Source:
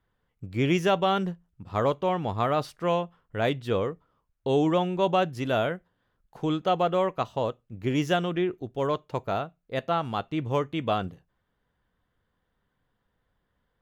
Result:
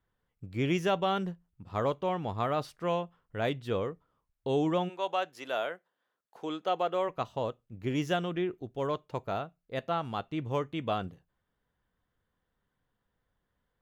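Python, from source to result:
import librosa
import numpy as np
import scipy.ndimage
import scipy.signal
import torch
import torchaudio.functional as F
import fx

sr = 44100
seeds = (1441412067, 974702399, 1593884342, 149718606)

y = fx.highpass(x, sr, hz=fx.line((4.88, 660.0), (7.08, 290.0)), slope=12, at=(4.88, 7.08), fade=0.02)
y = y * 10.0 ** (-5.0 / 20.0)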